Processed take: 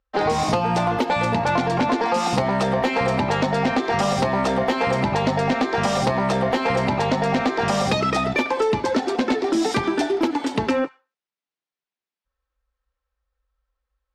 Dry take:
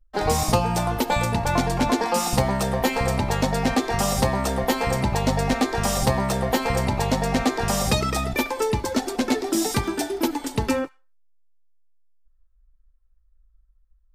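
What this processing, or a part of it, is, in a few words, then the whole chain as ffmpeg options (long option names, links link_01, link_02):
AM radio: -af "highpass=160,lowpass=4000,acompressor=threshold=-23dB:ratio=6,asoftclip=type=tanh:threshold=-19.5dB,volume=8dB"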